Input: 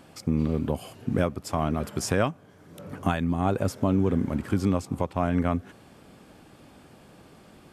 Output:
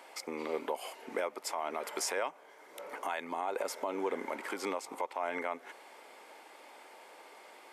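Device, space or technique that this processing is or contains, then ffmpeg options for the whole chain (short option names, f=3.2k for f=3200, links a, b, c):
laptop speaker: -af "highpass=f=430:w=0.5412,highpass=f=430:w=1.3066,equalizer=f=910:t=o:w=0.23:g=9,equalizer=f=2.1k:t=o:w=0.21:g=11,alimiter=limit=-23.5dB:level=0:latency=1:release=118"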